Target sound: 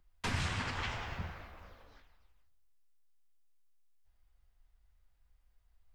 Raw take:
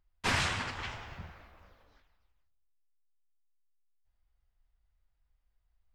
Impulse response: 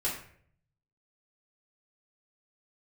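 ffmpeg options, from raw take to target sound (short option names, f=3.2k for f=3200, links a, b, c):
-filter_complex "[0:a]acrossover=split=250[a][b];[b]acompressor=threshold=-39dB:ratio=3[c];[a][c]amix=inputs=2:normalize=0,alimiter=level_in=4dB:limit=-24dB:level=0:latency=1:release=451,volume=-4dB,asplit=2[d][e];[1:a]atrim=start_sample=2205[f];[e][f]afir=irnorm=-1:irlink=0,volume=-23dB[g];[d][g]amix=inputs=2:normalize=0,volume=4.5dB"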